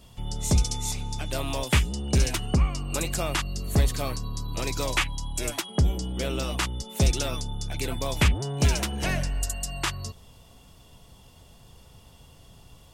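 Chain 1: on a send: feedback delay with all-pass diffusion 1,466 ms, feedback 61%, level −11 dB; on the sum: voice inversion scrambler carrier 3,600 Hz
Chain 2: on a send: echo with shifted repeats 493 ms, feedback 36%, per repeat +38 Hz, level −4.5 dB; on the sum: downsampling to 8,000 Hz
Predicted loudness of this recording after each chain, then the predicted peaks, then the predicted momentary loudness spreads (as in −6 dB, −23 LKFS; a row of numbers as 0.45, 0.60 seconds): −22.0, −26.5 LKFS; −8.0, −10.5 dBFS; 15, 10 LU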